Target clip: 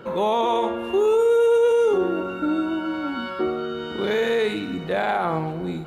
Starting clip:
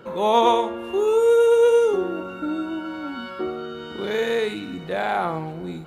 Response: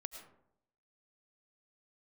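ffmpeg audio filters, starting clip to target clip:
-filter_complex "[0:a]alimiter=limit=-17dB:level=0:latency=1:release=25,asplit=2[a][b];[1:a]atrim=start_sample=2205,lowpass=5.3k[c];[b][c]afir=irnorm=-1:irlink=0,volume=-5dB[d];[a][d]amix=inputs=2:normalize=0,volume=1dB"

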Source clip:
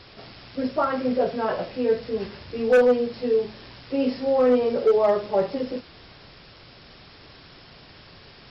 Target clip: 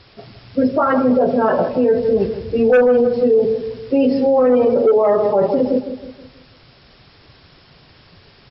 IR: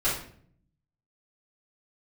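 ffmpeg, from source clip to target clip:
-filter_complex "[0:a]afftdn=nr=14:nf=-33,asplit=2[a][b];[b]adelay=160,lowpass=f=1k:p=1,volume=-11dB,asplit=2[c][d];[d]adelay=160,lowpass=f=1k:p=1,volume=0.47,asplit=2[e][f];[f]adelay=160,lowpass=f=1k:p=1,volume=0.47,asplit=2[g][h];[h]adelay=160,lowpass=f=1k:p=1,volume=0.47,asplit=2[i][j];[j]adelay=160,lowpass=f=1k:p=1,volume=0.47[k];[a][c][e][g][i][k]amix=inputs=6:normalize=0,alimiter=level_in=19.5dB:limit=-1dB:release=50:level=0:latency=1,volume=-6.5dB"

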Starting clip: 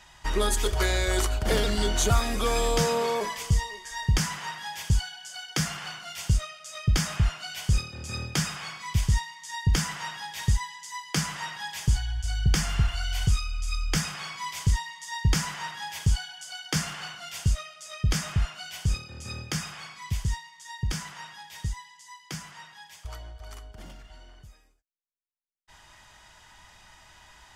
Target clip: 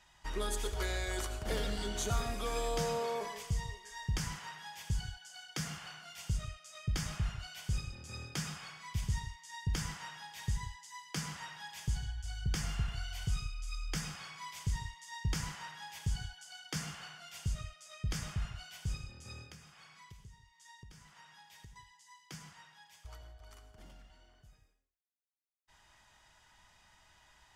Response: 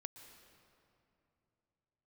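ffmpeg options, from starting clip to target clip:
-filter_complex "[0:a]asettb=1/sr,asplit=3[a][b][c];[a]atrim=end=19.464[d];[b]atrim=start=19.46:end=21.76,asetpts=PTS-STARTPTS,afade=t=in:d=0.004:c=qsin,afade=t=out:st=2.296:d=0.004:c=qsin,acompressor=threshold=-43dB:ratio=4[e];[c]atrim=start=21.756[f];[d][e]acrossfade=d=0.004:c1=hsin:c2=qsin[g];[g][f]acrossfade=d=0.004:c1=qsin:c2=hsin[h];[1:a]atrim=start_sample=2205,afade=t=out:st=0.34:d=0.01,atrim=end_sample=15435,asetrate=70560,aresample=44100[i];[h][i]afir=irnorm=-1:irlink=0,volume=-2dB"

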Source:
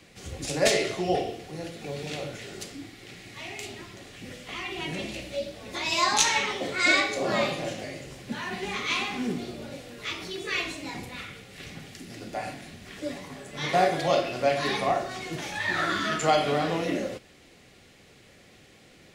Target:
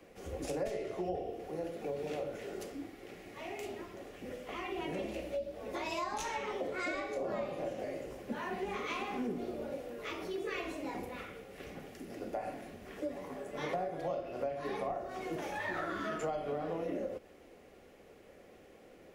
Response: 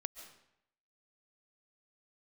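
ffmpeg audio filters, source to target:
-filter_complex "[0:a]equalizer=f=125:t=o:w=1:g=-11,equalizer=f=500:t=o:w=1:g=6,equalizer=f=2k:t=o:w=1:g=-4,equalizer=f=4k:t=o:w=1:g=-11,equalizer=f=8k:t=o:w=1:g=-9,acrossover=split=150[a][b];[b]acompressor=threshold=-32dB:ratio=10[c];[a][c]amix=inputs=2:normalize=0,volume=-2dB"

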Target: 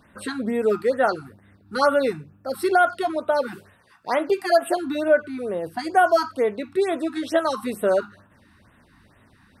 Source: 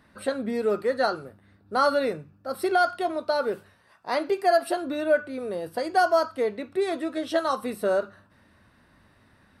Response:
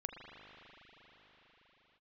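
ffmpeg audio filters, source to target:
-filter_complex "[0:a]asettb=1/sr,asplit=3[a][b][c];[a]atrim=end=5.084[d];[b]atrim=start=5.08:end=5.79,asetpts=PTS-STARTPTS,afade=t=in:d=0.004:c=qsin,afade=t=out:st=0.706:d=0.004:c=qsin,acrossover=split=2700[e][f];[f]acompressor=threshold=-55dB:ratio=4:attack=1:release=60[g];[e][g]amix=inputs=2:normalize=0[h];[c]atrim=start=5.786[i];[d][h]acrossfade=d=0.004:c1=hsin:c2=qsin[j];[j][i]acrossfade=d=0.004:c1=qsin:c2=hsin,afftfilt=real='re*(1-between(b*sr/1024,470*pow(5600/470,0.5+0.5*sin(2*PI*2.2*pts/sr))/1.41,470*pow(5600/470,0.5+0.5*sin(2*PI*2.2*pts/sr))*1.41))':imag='im*(1-between(b*sr/1024,470*pow(5600/470,0.5+0.5*sin(2*PI*2.2*pts/sr))/1.41,470*pow(5600/470,0.5+0.5*sin(2*PI*2.2*pts/sr))*1.41))':win_size=1024:overlap=0.75,volume=4dB"

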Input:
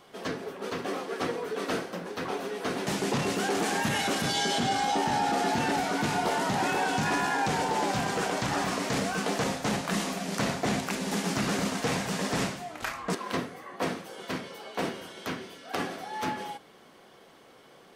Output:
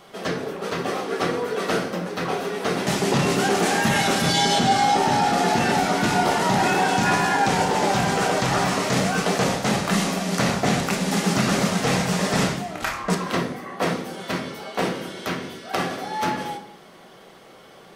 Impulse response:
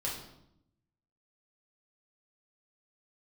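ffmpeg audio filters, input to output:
-filter_complex "[0:a]asplit=2[a][b];[1:a]atrim=start_sample=2205,asetrate=52920,aresample=44100[c];[b][c]afir=irnorm=-1:irlink=0,volume=-4dB[d];[a][d]amix=inputs=2:normalize=0,volume=4dB"

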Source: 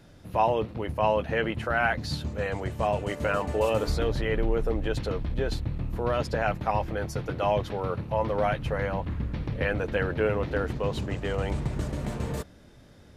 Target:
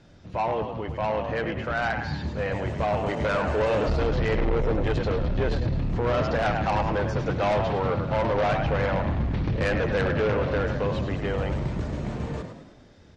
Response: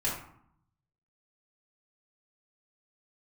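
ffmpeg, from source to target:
-filter_complex "[0:a]acrossover=split=3100[a][b];[b]acompressor=threshold=-52dB:ratio=4:attack=1:release=60[c];[a][c]amix=inputs=2:normalize=0,lowpass=f=7k:w=0.5412,lowpass=f=7k:w=1.3066,dynaudnorm=f=510:g=11:m=8.5dB,asplit=2[d][e];[e]asplit=6[f][g][h][i][j][k];[f]adelay=103,afreqshift=42,volume=-8.5dB[l];[g]adelay=206,afreqshift=84,volume=-14.7dB[m];[h]adelay=309,afreqshift=126,volume=-20.9dB[n];[i]adelay=412,afreqshift=168,volume=-27.1dB[o];[j]adelay=515,afreqshift=210,volume=-33.3dB[p];[k]adelay=618,afreqshift=252,volume=-39.5dB[q];[l][m][n][o][p][q]amix=inputs=6:normalize=0[r];[d][r]amix=inputs=2:normalize=0,asoftclip=type=tanh:threshold=-19dB" -ar 48000 -c:a libmp3lame -b:a 48k

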